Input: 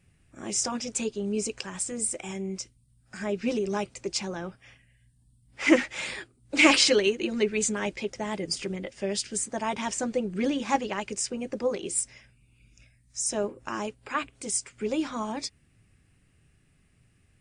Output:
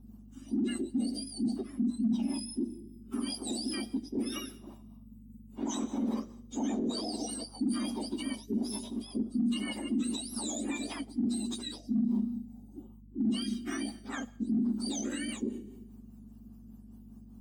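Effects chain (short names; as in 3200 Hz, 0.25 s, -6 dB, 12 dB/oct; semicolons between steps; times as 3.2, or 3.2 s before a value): spectrum mirrored in octaves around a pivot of 1400 Hz; Schroeder reverb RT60 1 s, combs from 26 ms, DRR 17.5 dB; rotary speaker horn 5 Hz; small resonant body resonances 240/2800 Hz, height 13 dB, ringing for 25 ms; in parallel at -9.5 dB: hard clip -8.5 dBFS, distortion -10 dB; on the sum: notch 2700 Hz, Q 14; reverse; compressor 8:1, threshold -24 dBFS, peak gain reduction 21 dB; reverse; hum 50 Hz, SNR 30 dB; limiter -25 dBFS, peak gain reduction 10 dB; tone controls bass +11 dB, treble +2 dB; gain -4 dB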